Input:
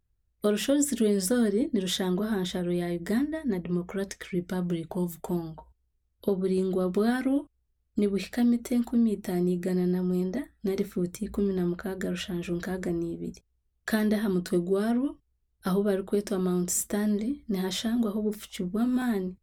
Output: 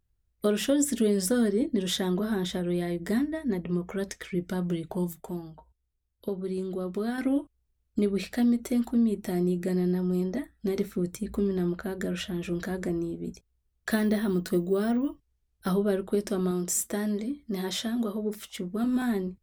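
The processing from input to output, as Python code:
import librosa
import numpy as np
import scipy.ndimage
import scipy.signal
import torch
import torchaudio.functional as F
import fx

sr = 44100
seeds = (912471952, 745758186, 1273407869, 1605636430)

y = fx.resample_bad(x, sr, factor=2, down='none', up='hold', at=(13.91, 15.7))
y = fx.low_shelf(y, sr, hz=150.0, db=-8.5, at=(16.51, 18.84))
y = fx.edit(y, sr, fx.clip_gain(start_s=5.13, length_s=2.05, db=-5.5), tone=tone)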